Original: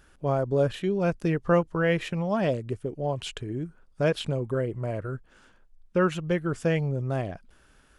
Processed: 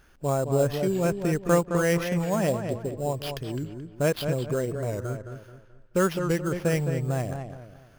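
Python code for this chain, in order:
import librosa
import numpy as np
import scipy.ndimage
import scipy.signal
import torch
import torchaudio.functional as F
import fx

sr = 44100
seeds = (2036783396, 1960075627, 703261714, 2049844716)

y = fx.sample_hold(x, sr, seeds[0], rate_hz=7900.0, jitter_pct=0)
y = fx.echo_filtered(y, sr, ms=215, feedback_pct=36, hz=3100.0, wet_db=-7)
y = fx.record_warp(y, sr, rpm=45.0, depth_cents=100.0)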